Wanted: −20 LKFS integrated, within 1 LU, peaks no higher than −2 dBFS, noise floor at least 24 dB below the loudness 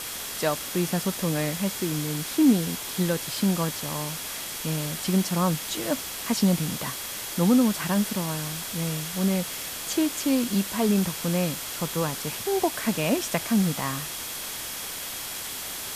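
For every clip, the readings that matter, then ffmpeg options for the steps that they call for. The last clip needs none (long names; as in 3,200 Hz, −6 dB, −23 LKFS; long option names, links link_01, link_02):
interfering tone 3,300 Hz; level of the tone −46 dBFS; background noise floor −35 dBFS; target noise floor −51 dBFS; integrated loudness −26.5 LKFS; sample peak −9.5 dBFS; target loudness −20.0 LKFS
→ -af "bandreject=frequency=3300:width=30"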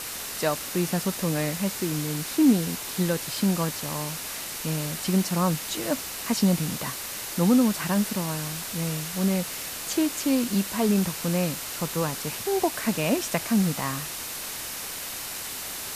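interfering tone none found; background noise floor −35 dBFS; target noise floor −51 dBFS
→ -af "afftdn=noise_reduction=16:noise_floor=-35"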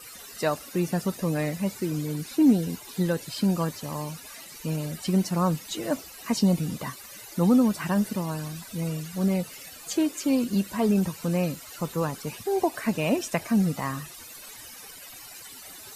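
background noise floor −45 dBFS; target noise floor −51 dBFS
→ -af "afftdn=noise_reduction=6:noise_floor=-45"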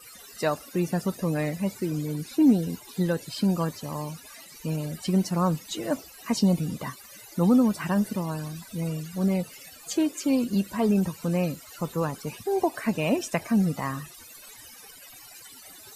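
background noise floor −48 dBFS; target noise floor −51 dBFS
→ -af "afftdn=noise_reduction=6:noise_floor=-48"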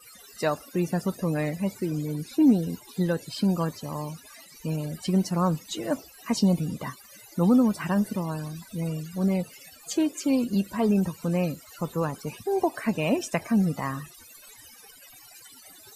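background noise floor −51 dBFS; integrated loudness −27.0 LKFS; sample peak −10.0 dBFS; target loudness −20.0 LKFS
→ -af "volume=7dB"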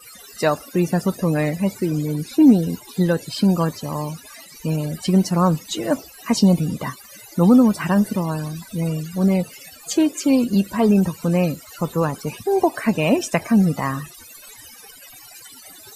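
integrated loudness −20.0 LKFS; sample peak −3.0 dBFS; background noise floor −44 dBFS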